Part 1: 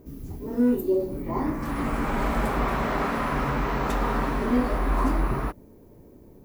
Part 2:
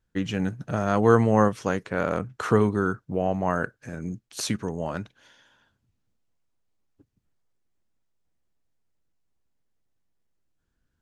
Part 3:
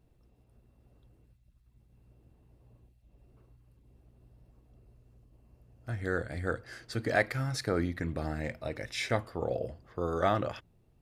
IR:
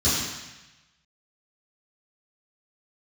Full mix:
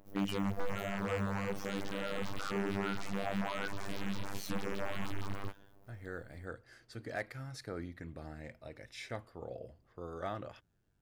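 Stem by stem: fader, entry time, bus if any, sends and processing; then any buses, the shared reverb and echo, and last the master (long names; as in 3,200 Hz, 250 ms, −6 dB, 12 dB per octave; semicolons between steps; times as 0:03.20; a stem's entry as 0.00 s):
−6.5 dB, 0.00 s, bus A, no send, two-band tremolo in antiphase 6.4 Hz, depth 50%, crossover 540 Hz; full-wave rectification
+1.5 dB, 0.00 s, bus A, no send, low-shelf EQ 83 Hz −11 dB; micro pitch shift up and down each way 37 cents
−12.0 dB, 0.00 s, no bus, no send, no processing
bus A: 0.0 dB, phases set to zero 98.8 Hz; brickwall limiter −18.5 dBFS, peak gain reduction 12 dB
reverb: not used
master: wave folding −25 dBFS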